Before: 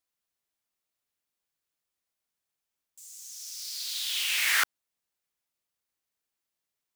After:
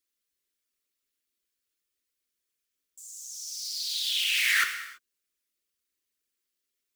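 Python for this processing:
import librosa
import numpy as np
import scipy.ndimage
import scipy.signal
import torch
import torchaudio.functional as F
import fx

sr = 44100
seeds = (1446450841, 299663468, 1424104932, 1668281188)

y = fx.envelope_sharpen(x, sr, power=1.5)
y = fx.fixed_phaser(y, sr, hz=330.0, stages=4)
y = fx.rev_gated(y, sr, seeds[0], gate_ms=360, shape='falling', drr_db=5.5)
y = y * librosa.db_to_amplitude(2.0)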